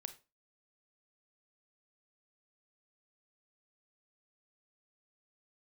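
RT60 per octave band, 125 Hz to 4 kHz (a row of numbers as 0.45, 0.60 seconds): 0.30, 0.35, 0.30, 0.30, 0.25, 0.25 seconds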